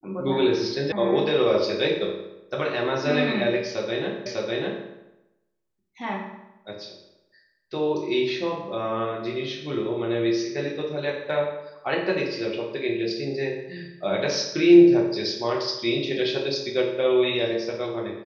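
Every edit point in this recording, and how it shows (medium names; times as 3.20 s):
0.92 s: sound stops dead
4.26 s: repeat of the last 0.6 s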